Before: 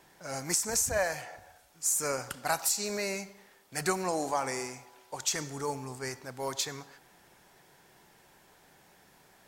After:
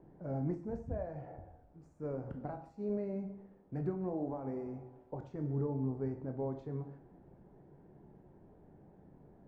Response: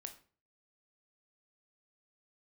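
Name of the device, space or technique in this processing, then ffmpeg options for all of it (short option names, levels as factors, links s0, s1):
television next door: -filter_complex "[0:a]acompressor=threshold=0.0158:ratio=5,lowpass=340[s0];[1:a]atrim=start_sample=2205[s1];[s0][s1]afir=irnorm=-1:irlink=0,volume=5.01"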